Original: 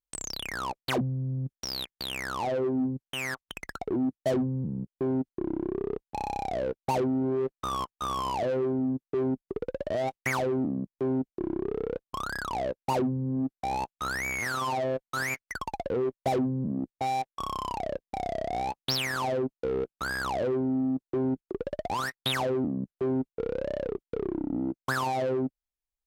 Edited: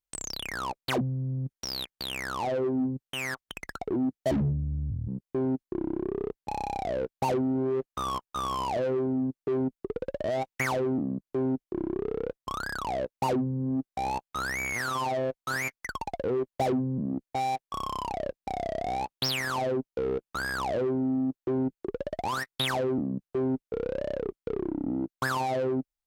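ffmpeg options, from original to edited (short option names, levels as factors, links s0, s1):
-filter_complex "[0:a]asplit=3[s0][s1][s2];[s0]atrim=end=4.314[s3];[s1]atrim=start=4.31:end=4.74,asetpts=PTS-STARTPTS,asetrate=24696,aresample=44100,atrim=end_sample=33862,asetpts=PTS-STARTPTS[s4];[s2]atrim=start=4.736[s5];[s3][s4]acrossfade=d=0.004:c1=hsin:c2=hsin[s6];[s6][s5]acrossfade=d=0.004:c1=hsin:c2=hsin"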